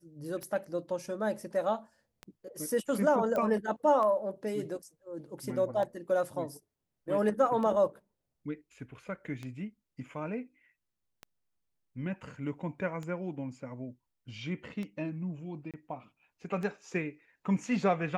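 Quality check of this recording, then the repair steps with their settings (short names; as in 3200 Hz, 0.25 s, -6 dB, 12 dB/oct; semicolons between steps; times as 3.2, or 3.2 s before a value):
tick 33 1/3 rpm -26 dBFS
3.36 pop -21 dBFS
15.71–15.74 gap 27 ms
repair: de-click; interpolate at 15.71, 27 ms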